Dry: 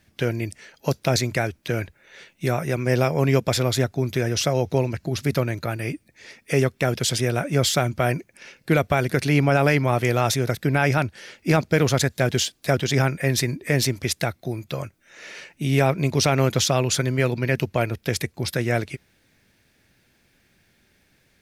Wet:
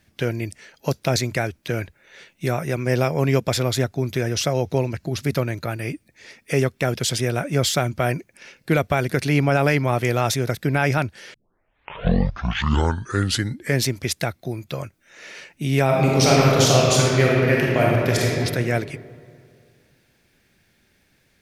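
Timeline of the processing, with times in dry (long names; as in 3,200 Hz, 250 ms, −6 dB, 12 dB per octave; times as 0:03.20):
0:11.34: tape start 2.49 s
0:15.85–0:18.30: thrown reverb, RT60 2.3 s, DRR −4 dB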